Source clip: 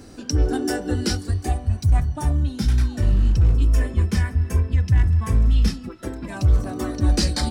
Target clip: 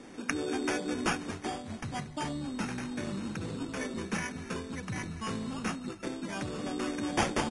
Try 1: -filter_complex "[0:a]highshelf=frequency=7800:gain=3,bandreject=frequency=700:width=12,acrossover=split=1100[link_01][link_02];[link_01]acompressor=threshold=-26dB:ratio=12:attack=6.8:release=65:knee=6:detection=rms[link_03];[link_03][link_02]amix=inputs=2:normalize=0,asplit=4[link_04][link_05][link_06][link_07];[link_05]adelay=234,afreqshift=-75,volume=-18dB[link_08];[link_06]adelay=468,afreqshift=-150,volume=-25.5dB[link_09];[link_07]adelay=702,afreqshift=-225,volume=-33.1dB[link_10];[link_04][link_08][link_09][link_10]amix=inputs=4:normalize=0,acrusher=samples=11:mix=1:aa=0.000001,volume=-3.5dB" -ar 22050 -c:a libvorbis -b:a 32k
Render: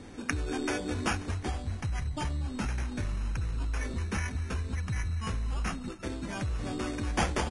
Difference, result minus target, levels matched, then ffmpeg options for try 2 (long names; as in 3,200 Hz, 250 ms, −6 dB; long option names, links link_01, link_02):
125 Hz band +6.5 dB
-filter_complex "[0:a]highpass=frequency=170:width=0.5412,highpass=frequency=170:width=1.3066,highshelf=frequency=7800:gain=3,bandreject=frequency=700:width=12,acrossover=split=1100[link_01][link_02];[link_01]acompressor=threshold=-26dB:ratio=12:attack=6.8:release=65:knee=6:detection=rms[link_03];[link_03][link_02]amix=inputs=2:normalize=0,asplit=4[link_04][link_05][link_06][link_07];[link_05]adelay=234,afreqshift=-75,volume=-18dB[link_08];[link_06]adelay=468,afreqshift=-150,volume=-25.5dB[link_09];[link_07]adelay=702,afreqshift=-225,volume=-33.1dB[link_10];[link_04][link_08][link_09][link_10]amix=inputs=4:normalize=0,acrusher=samples=11:mix=1:aa=0.000001,volume=-3.5dB" -ar 22050 -c:a libvorbis -b:a 32k